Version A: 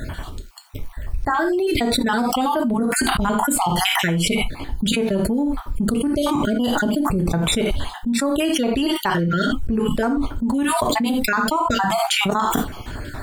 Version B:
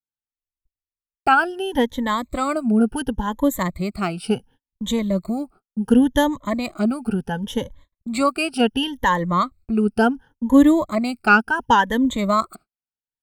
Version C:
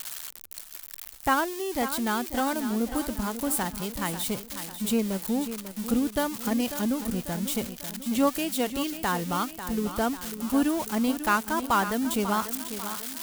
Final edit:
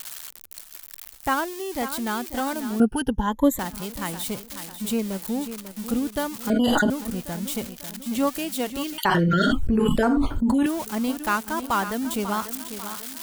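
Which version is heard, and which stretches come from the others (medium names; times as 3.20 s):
C
2.80–3.59 s: from B
6.50–6.90 s: from A
8.98–10.66 s: from A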